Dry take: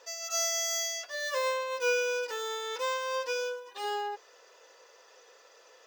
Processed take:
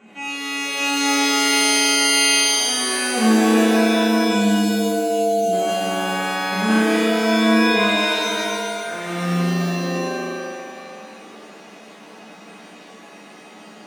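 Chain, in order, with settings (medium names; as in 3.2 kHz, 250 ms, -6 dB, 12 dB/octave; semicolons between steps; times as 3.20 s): spectral selection erased 1.73–2.34 s, 950–6400 Hz; wide varispeed 0.423×; pitch-shifted reverb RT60 2 s, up +7 st, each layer -2 dB, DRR -7.5 dB; trim +4 dB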